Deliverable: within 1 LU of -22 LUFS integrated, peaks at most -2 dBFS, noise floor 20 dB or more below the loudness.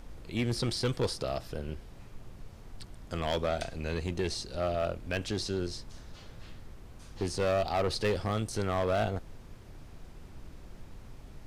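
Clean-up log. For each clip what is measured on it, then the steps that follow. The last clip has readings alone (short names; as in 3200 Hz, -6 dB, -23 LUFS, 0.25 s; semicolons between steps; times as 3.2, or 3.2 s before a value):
clipped 1.7%; flat tops at -23.5 dBFS; noise floor -50 dBFS; noise floor target -53 dBFS; loudness -32.5 LUFS; peak -23.5 dBFS; loudness target -22.0 LUFS
-> clip repair -23.5 dBFS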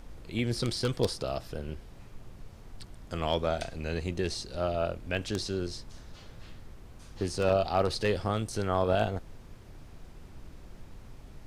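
clipped 0.0%; noise floor -50 dBFS; noise floor target -52 dBFS
-> noise print and reduce 6 dB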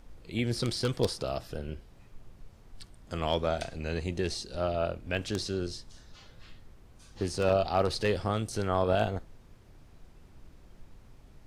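noise floor -56 dBFS; loudness -31.5 LUFS; peak -14.5 dBFS; loudness target -22.0 LUFS
-> gain +9.5 dB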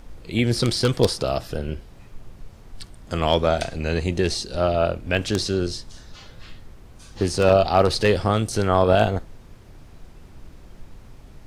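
loudness -22.0 LUFS; peak -5.0 dBFS; noise floor -46 dBFS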